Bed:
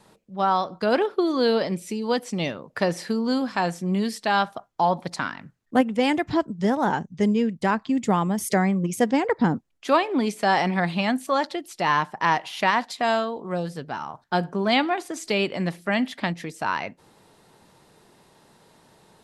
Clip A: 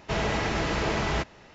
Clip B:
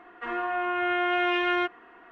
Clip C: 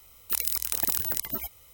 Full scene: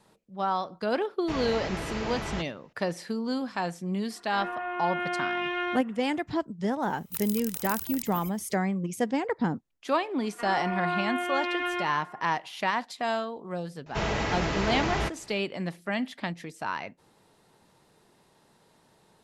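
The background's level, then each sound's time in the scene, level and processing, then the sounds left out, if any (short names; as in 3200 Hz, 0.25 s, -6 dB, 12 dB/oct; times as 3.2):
bed -6.5 dB
1.19 add A -7 dB + expander -47 dBFS
4.1 add B -5 dB
6.82 add C -8 dB
10.17 add B -4.5 dB + narrowing echo 73 ms, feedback 82%, level -7 dB
13.86 add A -1.5 dB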